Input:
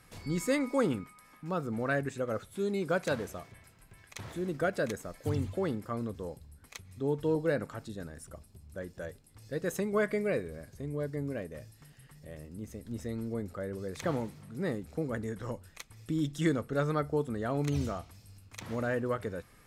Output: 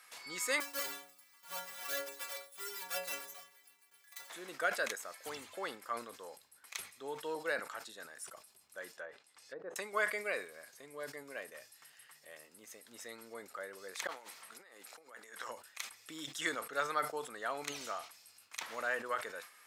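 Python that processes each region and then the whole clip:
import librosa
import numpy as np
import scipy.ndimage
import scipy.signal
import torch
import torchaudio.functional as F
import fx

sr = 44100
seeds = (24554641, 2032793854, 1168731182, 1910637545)

y = fx.chain(x, sr, fx.halfwave_hold(),
    fx.high_shelf(hz=8300.0, db=10.0),
    fx.stiff_resonator(f0_hz=84.0, decay_s=0.81, stiffness=0.03), at=(0.6, 4.3))
y = fx.chain(y, sr, fx.env_lowpass_down(base_hz=620.0, full_db=-33.5),
    fx.low_shelf(hz=78.0, db=-9.0), at=(8.92, 9.76))
y = fx.chain(y, sr, fx.over_compress(threshold_db=-40.0, ratio=-0.5),
    fx.highpass(hz=500.0, slope=6), at=(14.07, 15.48))
y = scipy.signal.sosfilt(scipy.signal.butter(2, 1000.0, 'highpass', fs=sr, output='sos'), y)
y = fx.sustainer(y, sr, db_per_s=140.0)
y = F.gain(torch.from_numpy(y), 3.0).numpy()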